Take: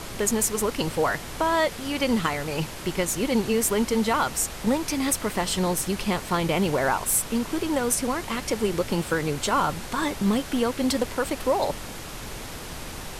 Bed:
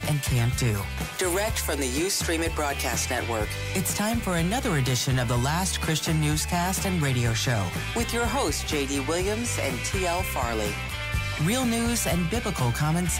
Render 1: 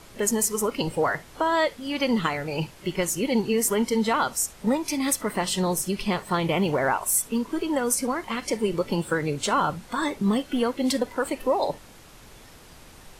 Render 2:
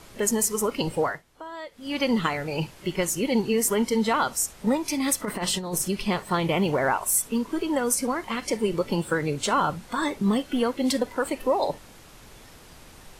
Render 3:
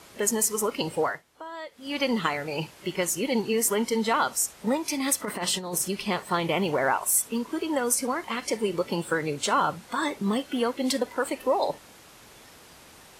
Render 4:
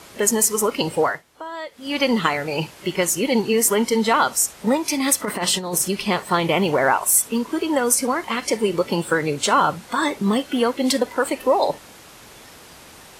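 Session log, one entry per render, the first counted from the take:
noise print and reduce 12 dB
1–1.94 dip -15.5 dB, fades 0.22 s; 5.25–5.88 negative-ratio compressor -27 dBFS, ratio -0.5
HPF 46 Hz; low shelf 190 Hz -9 dB
gain +6.5 dB

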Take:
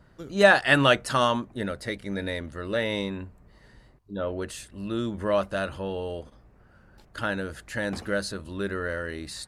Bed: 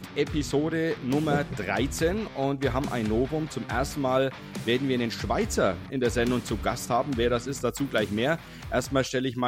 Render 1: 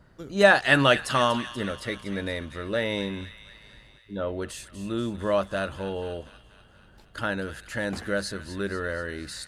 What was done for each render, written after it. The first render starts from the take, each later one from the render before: thin delay 0.241 s, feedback 63%, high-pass 1700 Hz, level -11 dB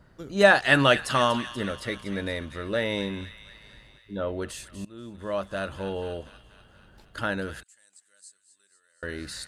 4.85–5.87 fade in, from -22 dB; 7.63–9.03 band-pass 8000 Hz, Q 9.3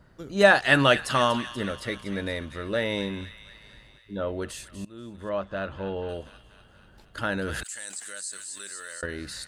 5.29–6.09 Bessel low-pass 2800 Hz; 7.32–9.06 fast leveller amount 70%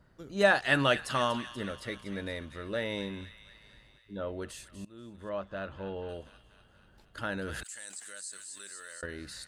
gain -6.5 dB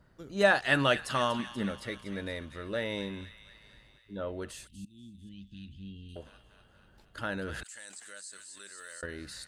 1.39–1.86 small resonant body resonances 210/830/2200 Hz, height 8 dB; 4.67–6.16 elliptic band-stop 250–3000 Hz, stop band 50 dB; 7.44–8.78 high shelf 8100 Hz -8.5 dB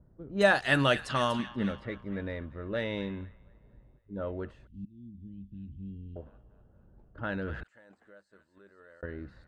low-pass opened by the level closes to 590 Hz, open at -24.5 dBFS; low shelf 210 Hz +5 dB

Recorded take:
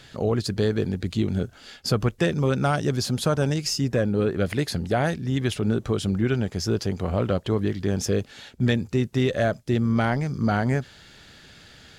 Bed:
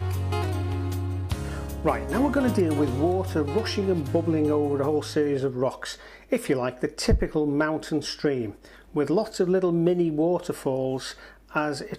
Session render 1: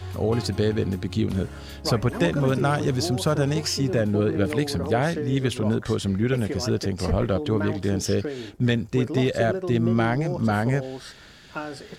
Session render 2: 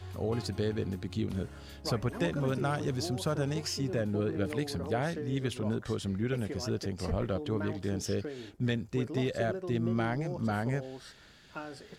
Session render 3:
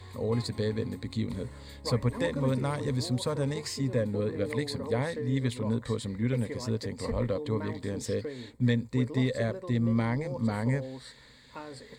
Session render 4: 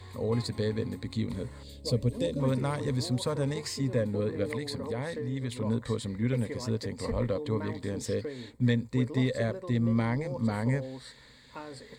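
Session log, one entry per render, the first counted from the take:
add bed -7 dB
gain -9 dB
ripple EQ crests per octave 0.99, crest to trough 12 dB
1.63–2.4 band shelf 1300 Hz -15 dB; 4.56–5.57 compressor 3:1, threshold -30 dBFS

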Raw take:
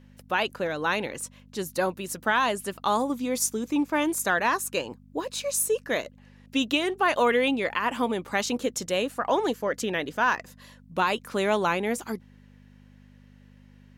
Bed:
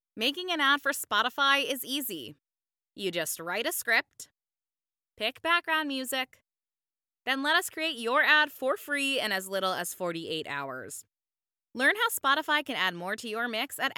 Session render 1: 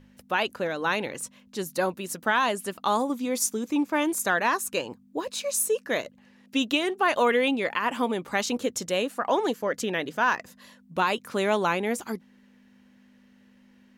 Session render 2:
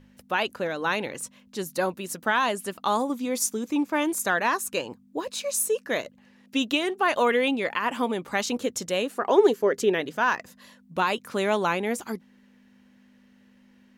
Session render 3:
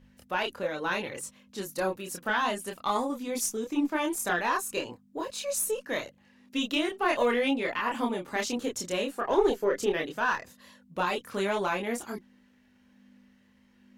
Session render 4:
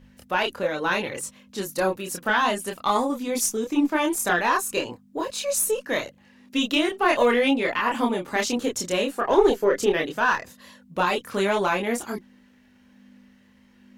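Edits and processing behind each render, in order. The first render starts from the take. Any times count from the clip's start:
de-hum 50 Hz, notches 3
9.09–10.01 bell 400 Hz +13.5 dB 0.3 oct
one diode to ground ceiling -9 dBFS; chorus voices 6, 0.54 Hz, delay 27 ms, depth 2 ms
gain +6 dB

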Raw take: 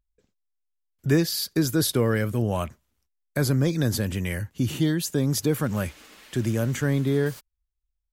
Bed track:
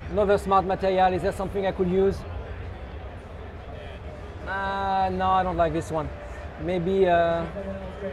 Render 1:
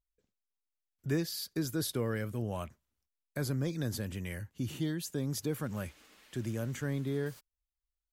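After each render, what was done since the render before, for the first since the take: gain -11 dB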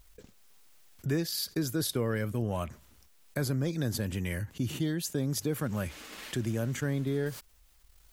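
transient shaper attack +2 dB, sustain -7 dB; fast leveller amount 50%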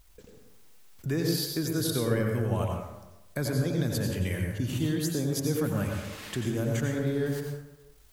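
plate-style reverb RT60 1 s, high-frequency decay 0.5×, pre-delay 75 ms, DRR 1 dB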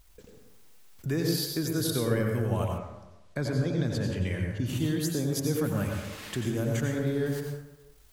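2.78–4.66 air absorption 73 m; 5.67–6.49 block floating point 7-bit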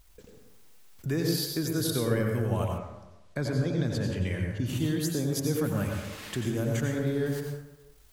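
nothing audible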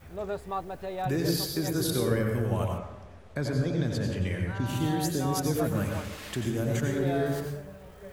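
add bed track -13 dB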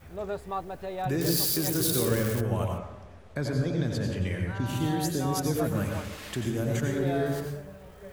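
1.21–2.41 switching spikes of -23 dBFS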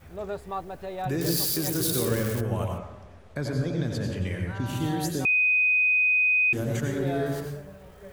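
5.25–6.53 bleep 2500 Hz -18.5 dBFS

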